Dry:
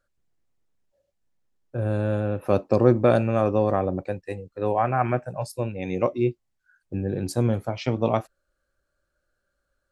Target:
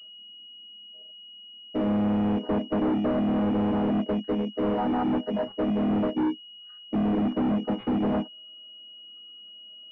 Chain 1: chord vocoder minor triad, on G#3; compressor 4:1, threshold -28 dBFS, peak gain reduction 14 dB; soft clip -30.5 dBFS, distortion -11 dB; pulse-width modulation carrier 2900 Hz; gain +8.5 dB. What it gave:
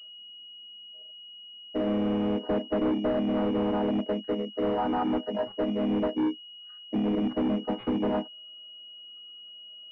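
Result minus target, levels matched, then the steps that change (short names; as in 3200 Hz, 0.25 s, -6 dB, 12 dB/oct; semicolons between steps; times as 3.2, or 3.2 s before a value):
125 Hz band -3.0 dB
add after compressor: bell 170 Hz +9 dB 1.9 oct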